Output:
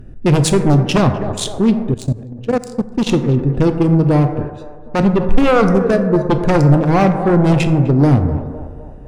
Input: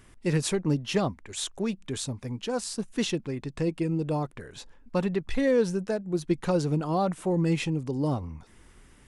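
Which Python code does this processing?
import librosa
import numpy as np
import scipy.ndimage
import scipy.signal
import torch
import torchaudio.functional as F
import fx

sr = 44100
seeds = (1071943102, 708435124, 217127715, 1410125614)

y = fx.wiener(x, sr, points=41)
y = fx.echo_banded(y, sr, ms=253, feedback_pct=57, hz=710.0, wet_db=-13)
y = fx.fold_sine(y, sr, drive_db=9, ceiling_db=-13.0)
y = fx.low_shelf(y, sr, hz=170.0, db=5.0)
y = fx.rev_plate(y, sr, seeds[0], rt60_s=1.5, hf_ratio=0.3, predelay_ms=0, drr_db=7.0)
y = fx.level_steps(y, sr, step_db=17, at=(1.9, 3.07))
y = fx.low_shelf(y, sr, hz=370.0, db=-7.5, at=(4.47, 4.99))
y = y * 10.0 ** (3.5 / 20.0)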